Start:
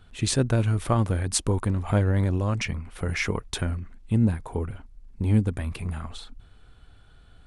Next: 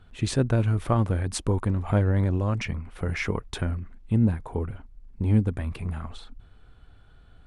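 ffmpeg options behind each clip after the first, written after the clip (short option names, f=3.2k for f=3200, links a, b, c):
-af "highshelf=f=3.5k:g=-9"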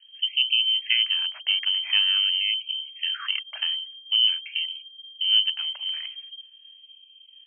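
-af "adynamicsmooth=sensitivity=8:basefreq=580,lowpass=f=2.7k:t=q:w=0.5098,lowpass=f=2.7k:t=q:w=0.6013,lowpass=f=2.7k:t=q:w=0.9,lowpass=f=2.7k:t=q:w=2.563,afreqshift=-3200,afftfilt=real='re*gte(b*sr/1024,470*pow(2300/470,0.5+0.5*sin(2*PI*0.46*pts/sr)))':imag='im*gte(b*sr/1024,470*pow(2300/470,0.5+0.5*sin(2*PI*0.46*pts/sr)))':win_size=1024:overlap=0.75"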